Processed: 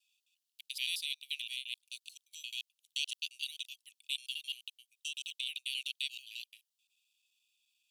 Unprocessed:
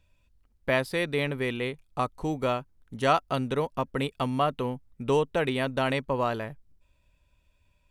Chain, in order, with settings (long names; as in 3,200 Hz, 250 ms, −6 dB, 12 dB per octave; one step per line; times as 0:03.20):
slices reordered back to front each 87 ms, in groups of 2
Butterworth high-pass 2,700 Hz 72 dB per octave
level +3 dB